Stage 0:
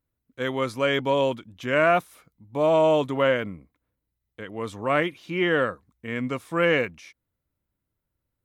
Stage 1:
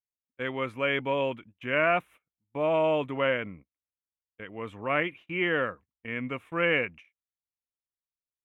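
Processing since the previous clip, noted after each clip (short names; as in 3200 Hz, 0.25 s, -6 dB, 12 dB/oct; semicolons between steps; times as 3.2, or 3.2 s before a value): gate -42 dBFS, range -25 dB; resonant high shelf 3500 Hz -10.5 dB, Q 3; gain -6 dB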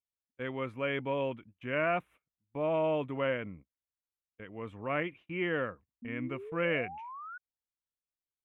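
tilt -1.5 dB/oct; painted sound rise, 6.02–7.38, 230–1500 Hz -38 dBFS; gain -6 dB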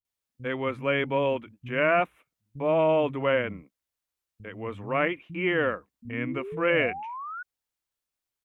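bands offset in time lows, highs 50 ms, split 190 Hz; gain +7.5 dB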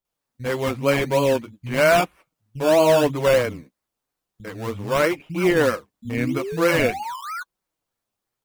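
in parallel at -3 dB: decimation with a swept rate 17×, swing 60% 3.1 Hz; on the sum: flange 0.92 Hz, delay 5.1 ms, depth 4.8 ms, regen -27%; gain +6 dB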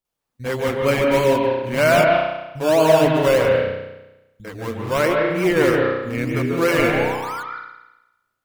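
reverb RT60 1.0 s, pre-delay 0.138 s, DRR 0.5 dB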